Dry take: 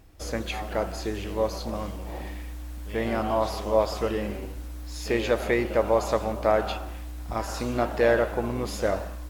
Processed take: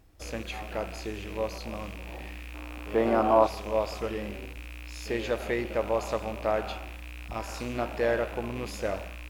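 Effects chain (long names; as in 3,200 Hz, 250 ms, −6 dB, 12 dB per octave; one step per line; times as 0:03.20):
loose part that buzzes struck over −34 dBFS, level −26 dBFS
0:02.54–0:03.47: flat-topped bell 580 Hz +10 dB 2.8 octaves
level −5.5 dB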